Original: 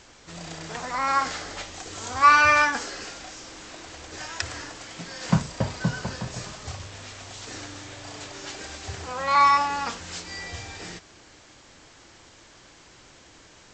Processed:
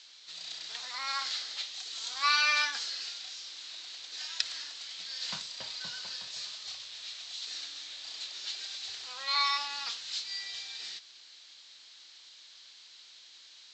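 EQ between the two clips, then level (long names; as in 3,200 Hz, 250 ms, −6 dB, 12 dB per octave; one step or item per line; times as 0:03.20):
resonant band-pass 4,000 Hz, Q 3.9
+7.5 dB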